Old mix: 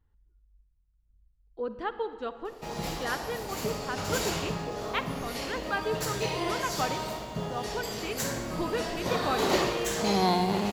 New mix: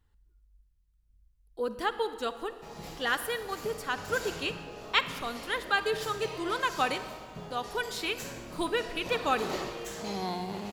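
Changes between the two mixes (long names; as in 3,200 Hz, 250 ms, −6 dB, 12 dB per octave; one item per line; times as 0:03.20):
speech: remove head-to-tape spacing loss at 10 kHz 29 dB
background −9.5 dB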